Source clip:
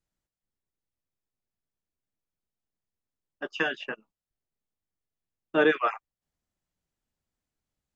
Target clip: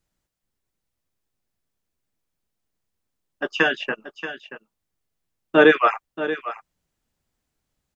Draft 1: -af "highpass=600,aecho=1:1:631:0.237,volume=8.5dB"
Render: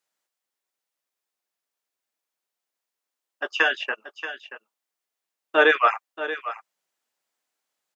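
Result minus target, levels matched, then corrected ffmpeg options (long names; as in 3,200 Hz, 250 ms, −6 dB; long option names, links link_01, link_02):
500 Hz band −3.0 dB
-af "aecho=1:1:631:0.237,volume=8.5dB"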